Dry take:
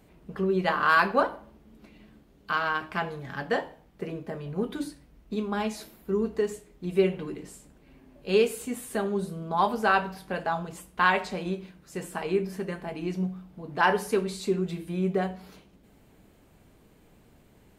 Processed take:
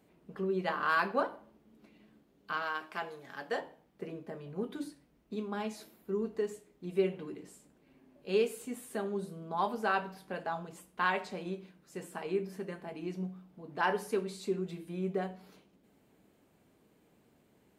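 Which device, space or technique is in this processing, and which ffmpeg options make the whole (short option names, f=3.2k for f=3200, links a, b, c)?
filter by subtraction: -filter_complex "[0:a]asplit=2[a][b];[b]lowpass=270,volume=-1[c];[a][c]amix=inputs=2:normalize=0,asettb=1/sr,asplit=3[d][e][f];[d]atrim=end=2.624[g];[e]atrim=start=2.62:end=3.6,asetpts=PTS-STARTPTS,afade=t=in:d=0.004:c=qsin,afade=t=out:st=0.976:d=0.004:c=qsin,bass=f=250:g=-11,treble=f=4k:g=5[h];[f]atrim=start=3.596[i];[g][h]acrossfade=d=0.004:c1=hsin:c2=qsin[j];[j][i]acrossfade=d=0.004:c1=qsin:c2=hsin,volume=-8.5dB"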